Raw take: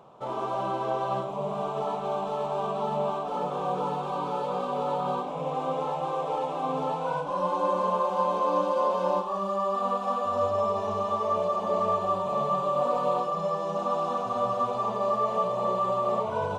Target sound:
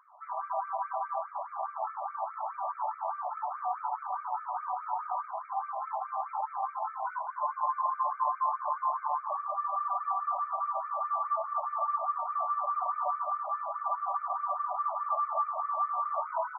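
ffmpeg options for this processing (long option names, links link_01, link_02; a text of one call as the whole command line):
ffmpeg -i in.wav -filter_complex "[0:a]bandreject=frequency=45.21:width_type=h:width=4,bandreject=frequency=90.42:width_type=h:width=4,bandreject=frequency=135.63:width_type=h:width=4,bandreject=frequency=180.84:width_type=h:width=4,bandreject=frequency=226.05:width_type=h:width=4,bandreject=frequency=271.26:width_type=h:width=4,bandreject=frequency=316.47:width_type=h:width=4,bandreject=frequency=361.68:width_type=h:width=4,bandreject=frequency=406.89:width_type=h:width=4,bandreject=frequency=452.1:width_type=h:width=4,bandreject=frequency=497.31:width_type=h:width=4,bandreject=frequency=542.52:width_type=h:width=4,bandreject=frequency=587.73:width_type=h:width=4,acrossover=split=280|1500[link_01][link_02][link_03];[link_03]alimiter=level_in=16dB:limit=-24dB:level=0:latency=1:release=88,volume=-16dB[link_04];[link_01][link_02][link_04]amix=inputs=3:normalize=0,asplit=8[link_05][link_06][link_07][link_08][link_09][link_10][link_11][link_12];[link_06]adelay=232,afreqshift=51,volume=-14.5dB[link_13];[link_07]adelay=464,afreqshift=102,volume=-18.5dB[link_14];[link_08]adelay=696,afreqshift=153,volume=-22.5dB[link_15];[link_09]adelay=928,afreqshift=204,volume=-26.5dB[link_16];[link_10]adelay=1160,afreqshift=255,volume=-30.6dB[link_17];[link_11]adelay=1392,afreqshift=306,volume=-34.6dB[link_18];[link_12]adelay=1624,afreqshift=357,volume=-38.6dB[link_19];[link_05][link_13][link_14][link_15][link_16][link_17][link_18][link_19]amix=inputs=8:normalize=0,afftfilt=real='re*between(b*sr/1024,840*pow(1700/840,0.5+0.5*sin(2*PI*4.8*pts/sr))/1.41,840*pow(1700/840,0.5+0.5*sin(2*PI*4.8*pts/sr))*1.41)':imag='im*between(b*sr/1024,840*pow(1700/840,0.5+0.5*sin(2*PI*4.8*pts/sr))/1.41,840*pow(1700/840,0.5+0.5*sin(2*PI*4.8*pts/sr))*1.41)':win_size=1024:overlap=0.75" out.wav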